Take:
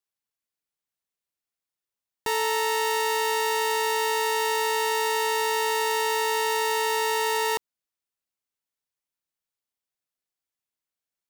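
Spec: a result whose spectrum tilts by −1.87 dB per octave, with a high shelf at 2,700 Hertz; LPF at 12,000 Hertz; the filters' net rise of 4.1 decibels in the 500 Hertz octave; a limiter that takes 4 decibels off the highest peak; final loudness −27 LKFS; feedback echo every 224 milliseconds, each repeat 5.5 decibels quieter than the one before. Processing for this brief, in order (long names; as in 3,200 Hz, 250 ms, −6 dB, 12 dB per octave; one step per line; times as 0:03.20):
low-pass filter 12,000 Hz
parametric band 500 Hz +4.5 dB
high-shelf EQ 2,700 Hz +6 dB
brickwall limiter −14.5 dBFS
repeating echo 224 ms, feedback 53%, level −5.5 dB
level −3 dB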